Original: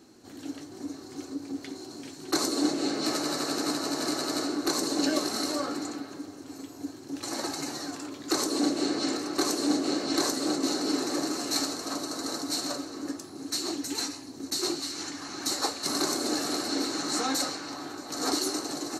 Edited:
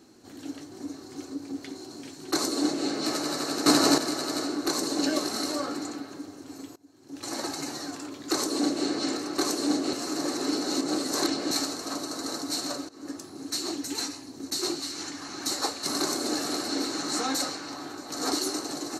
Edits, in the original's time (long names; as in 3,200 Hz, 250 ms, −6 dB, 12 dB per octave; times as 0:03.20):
0:03.66–0:03.98: clip gain +10 dB
0:06.76–0:07.28: fade in quadratic, from −22.5 dB
0:09.93–0:11.51: reverse
0:12.89–0:13.19: fade in, from −17.5 dB